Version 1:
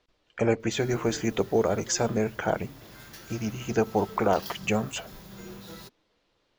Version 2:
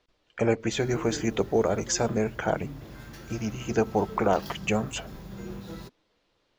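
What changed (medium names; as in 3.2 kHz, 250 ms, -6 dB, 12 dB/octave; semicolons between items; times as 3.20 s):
background: add tilt EQ -2.5 dB/octave; reverb: on, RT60 0.40 s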